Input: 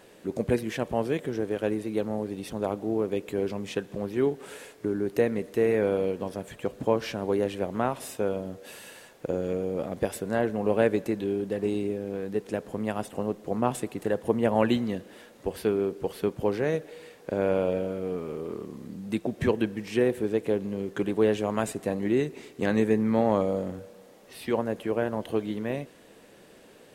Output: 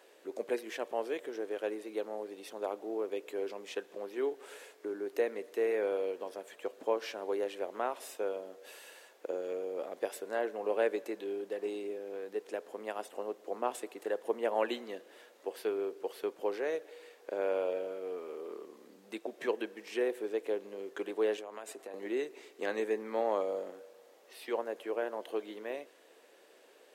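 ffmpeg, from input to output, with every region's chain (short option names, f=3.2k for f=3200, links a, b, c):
-filter_complex "[0:a]asettb=1/sr,asplit=3[a][b][c];[a]atrim=end=21.374[d];[b]atrim=start=21.37:end=21.94,asetpts=PTS-STARTPTS,afade=t=in:d=0.004:c=qsin,afade=t=out:st=0.566:d=0.004:c=qsin,highpass=160,agate=range=-33dB:threshold=-42dB:ratio=3:release=100:detection=peak,acompressor=threshold=-31dB:ratio=12:attack=3.2:release=140:knee=1:detection=peak[e];[c]atrim=start=21.936[f];[d][e]acrossfade=d=0.004:c1=hsin:c2=qsin[g];[g][f]acrossfade=d=0.004:c1=qsin:c2=hsin,highpass=f=360:w=0.5412,highpass=f=360:w=1.3066,equalizer=f=9.6k:t=o:w=0.45:g=-3,volume=-6dB"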